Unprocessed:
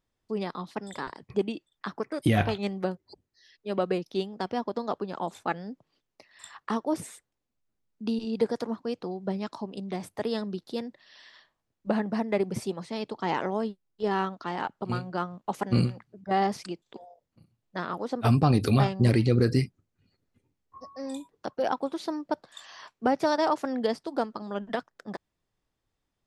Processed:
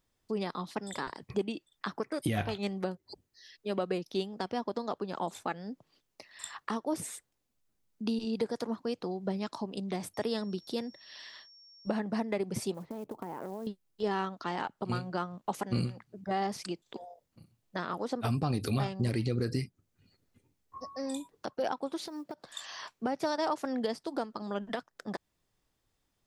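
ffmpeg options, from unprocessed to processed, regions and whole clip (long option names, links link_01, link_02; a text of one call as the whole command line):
ffmpeg -i in.wav -filter_complex "[0:a]asettb=1/sr,asplit=3[link_01][link_02][link_03];[link_01]atrim=end=10.144[link_04];[link_02]atrim=start=10.14:end=11.99,asetpts=PTS-STARTPTS,afade=type=in:duration=0.004:curve=qsin,afade=type=out:start_time=1.846:duration=0.004:curve=qsin,agate=range=-33dB:threshold=-57dB:ratio=3:release=100:detection=peak,aeval=exprs='val(0)+0.001*sin(2*PI*5500*n/s)':channel_layout=same[link_05];[link_03]atrim=start=11.986[link_06];[link_04][link_05]acrossfade=duration=0.004:curve1=hsin:curve2=qsin[link_07];[link_07][link_06]acrossfade=duration=0.004:curve1=qsin:curve2=hsin,asettb=1/sr,asplit=3[link_08][link_09][link_10];[link_08]atrim=end=12.744[link_11];[link_09]atrim=start=12.74:end=13.67,asetpts=PTS-STARTPTS,afade=type=in:duration=0.004:curve=qsin,afade=type=out:start_time=0.926:duration=0.004:curve=qsin,lowpass=1000,acompressor=threshold=-35dB:ratio=16:attack=3.2:release=140:knee=1:detection=peak,acrusher=bits=7:mode=log:mix=0:aa=0.000001[link_12];[link_10]atrim=start=13.666[link_13];[link_11][link_12]acrossfade=duration=0.004:curve1=hsin:curve2=qsin[link_14];[link_14][link_13]acrossfade=duration=0.004:curve1=qsin:curve2=hsin,asettb=1/sr,asplit=3[link_15][link_16][link_17];[link_15]atrim=end=21.984[link_18];[link_16]atrim=start=21.98:end=22.44,asetpts=PTS-STARTPTS,afade=type=in:duration=0.004:curve=qsin,afade=type=out:start_time=0.456:duration=0.004:curve=qsin,acrusher=bits=9:mode=log:mix=0:aa=0.000001,highpass=100,acompressor=threshold=-38dB:ratio=12:attack=3.2:release=140:knee=1:detection=peak[link_19];[link_17]atrim=start=22.436[link_20];[link_18][link_19]acrossfade=duration=0.004:curve1=hsin:curve2=qsin[link_21];[link_21][link_20]acrossfade=duration=0.004:curve1=qsin:curve2=hsin,highshelf=frequency=4500:gain=6,acompressor=threshold=-39dB:ratio=1.5,alimiter=limit=-22dB:level=0:latency=1:release=298,volume=2dB" out.wav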